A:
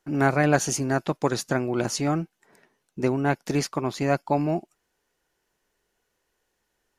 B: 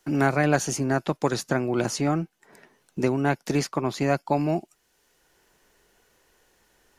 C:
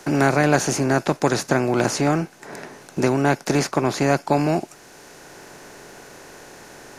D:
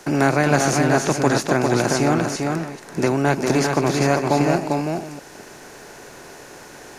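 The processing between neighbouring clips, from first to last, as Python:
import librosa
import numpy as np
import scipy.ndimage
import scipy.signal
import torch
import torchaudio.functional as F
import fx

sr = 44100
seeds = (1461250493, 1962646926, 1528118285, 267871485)

y1 = fx.band_squash(x, sr, depth_pct=40)
y2 = fx.bin_compress(y1, sr, power=0.6)
y2 = y2 * librosa.db_to_amplitude(2.0)
y3 = fx.reverse_delay(y2, sr, ms=218, wet_db=-10.5)
y3 = y3 + 10.0 ** (-4.0 / 20.0) * np.pad(y3, (int(398 * sr / 1000.0), 0))[:len(y3)]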